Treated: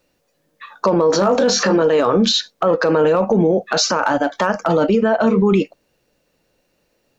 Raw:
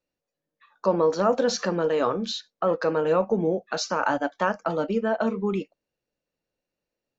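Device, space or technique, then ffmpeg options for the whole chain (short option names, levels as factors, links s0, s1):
loud club master: -filter_complex "[0:a]asettb=1/sr,asplit=3[s0][s1][s2];[s0]atrim=end=1.124[s3];[s1]atrim=start=1.12:end=1.82,asetpts=PTS-STARTPTS,afade=t=in:d=0.004:c=qsin,afade=t=out:st=0.696:d=0.004:c=qsin,asplit=2[s4][s5];[s5]adelay=20,volume=0.631[s6];[s4][s6]amix=inputs=2:normalize=0,atrim=end_sample=30870[s7];[s2]atrim=start=1.816[s8];[s3][s7]acrossfade=d=0.004:c1=hsin:c2=qsin[s9];[s9][s8]acrossfade=d=0.004:c1=qsin:c2=hsin,acompressor=threshold=0.0501:ratio=2,asoftclip=type=hard:threshold=0.141,alimiter=level_in=22.4:limit=0.891:release=50:level=0:latency=1,volume=0.473"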